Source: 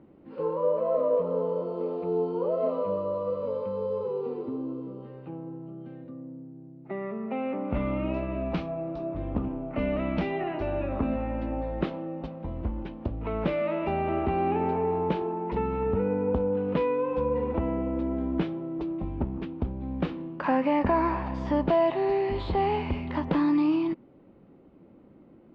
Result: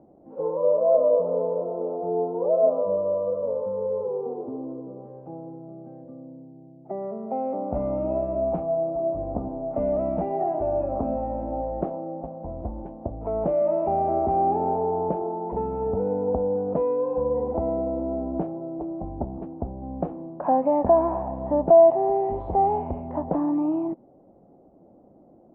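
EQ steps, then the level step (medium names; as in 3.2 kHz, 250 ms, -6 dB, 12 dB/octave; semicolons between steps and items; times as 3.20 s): resonant low-pass 710 Hz, resonance Q 4.9; -2.5 dB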